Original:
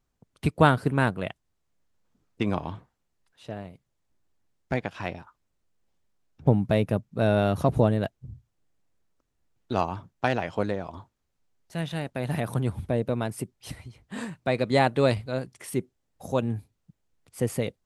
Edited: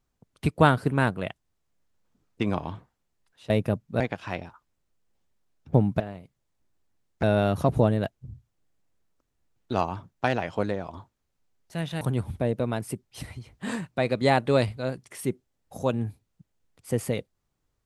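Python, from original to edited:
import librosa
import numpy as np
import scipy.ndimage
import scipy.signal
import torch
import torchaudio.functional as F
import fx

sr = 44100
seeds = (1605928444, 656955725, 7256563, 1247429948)

y = fx.edit(x, sr, fx.swap(start_s=3.5, length_s=1.23, other_s=6.73, other_length_s=0.5),
    fx.cut(start_s=12.01, length_s=0.49),
    fx.clip_gain(start_s=13.73, length_s=0.63, db=3.5), tone=tone)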